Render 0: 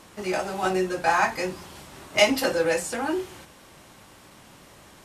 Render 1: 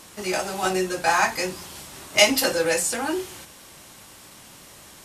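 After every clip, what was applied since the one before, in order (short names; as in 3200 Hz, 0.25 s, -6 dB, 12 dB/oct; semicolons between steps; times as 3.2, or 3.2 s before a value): high shelf 3400 Hz +10.5 dB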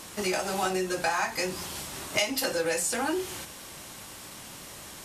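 compressor 5:1, threshold -28 dBFS, peak gain reduction 15.5 dB; gain +2.5 dB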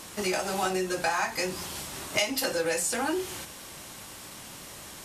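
nothing audible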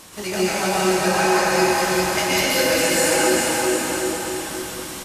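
bouncing-ball echo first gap 0.4 s, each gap 0.85×, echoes 5; plate-style reverb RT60 2.6 s, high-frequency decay 0.85×, pre-delay 0.11 s, DRR -8 dB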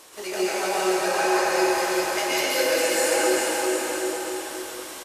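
resonant low shelf 270 Hz -12 dB, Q 1.5; speakerphone echo 0.14 s, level -10 dB; gain -5 dB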